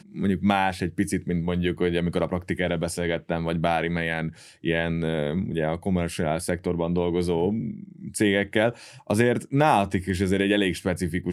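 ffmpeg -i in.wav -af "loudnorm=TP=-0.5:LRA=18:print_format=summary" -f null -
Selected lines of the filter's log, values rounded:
Input Integrated:    -24.7 LUFS
Input True Peak:      -5.2 dBTP
Input LRA:             2.7 LU
Input Threshold:     -34.9 LUFS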